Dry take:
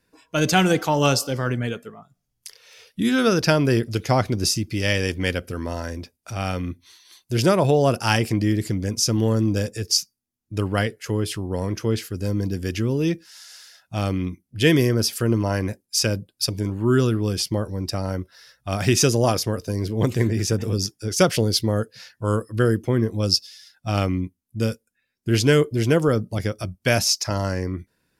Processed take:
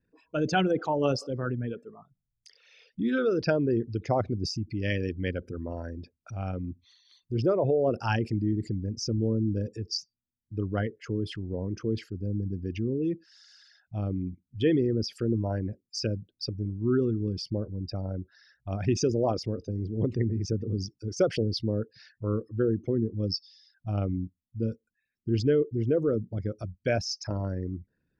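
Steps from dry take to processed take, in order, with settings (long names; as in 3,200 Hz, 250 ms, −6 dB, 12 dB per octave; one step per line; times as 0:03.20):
spectral envelope exaggerated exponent 2
high-frequency loss of the air 130 metres
level −6.5 dB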